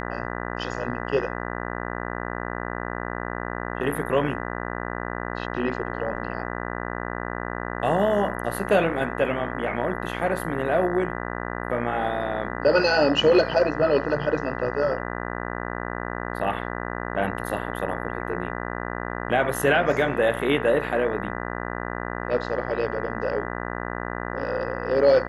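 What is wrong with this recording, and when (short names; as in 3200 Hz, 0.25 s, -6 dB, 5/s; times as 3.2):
buzz 60 Hz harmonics 33 -31 dBFS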